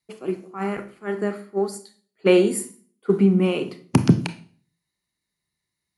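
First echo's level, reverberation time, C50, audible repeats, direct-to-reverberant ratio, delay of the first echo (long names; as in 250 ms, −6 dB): no echo audible, 0.45 s, 14.0 dB, no echo audible, 9.5 dB, no echo audible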